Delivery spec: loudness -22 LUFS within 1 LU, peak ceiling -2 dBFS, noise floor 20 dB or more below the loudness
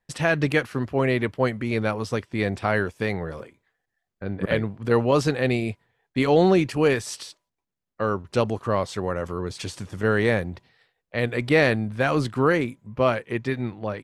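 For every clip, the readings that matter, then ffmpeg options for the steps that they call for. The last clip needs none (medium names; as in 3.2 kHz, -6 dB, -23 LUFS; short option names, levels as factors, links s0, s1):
loudness -24.0 LUFS; peak level -6.5 dBFS; loudness target -22.0 LUFS
-> -af "volume=1.26"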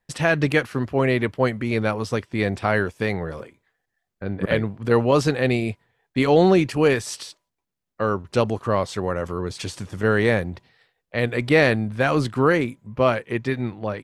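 loudness -22.0 LUFS; peak level -4.0 dBFS; noise floor -80 dBFS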